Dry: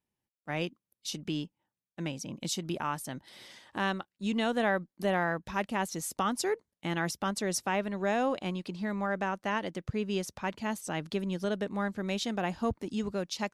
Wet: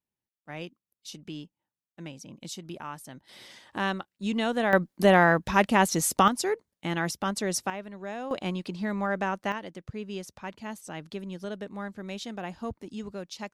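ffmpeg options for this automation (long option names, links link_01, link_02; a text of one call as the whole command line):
ffmpeg -i in.wav -af "asetnsamples=nb_out_samples=441:pad=0,asendcmd='3.29 volume volume 2dB;4.73 volume volume 10dB;6.28 volume volume 2.5dB;7.7 volume volume -7.5dB;8.31 volume volume 3dB;9.52 volume volume -4.5dB',volume=-5.5dB" out.wav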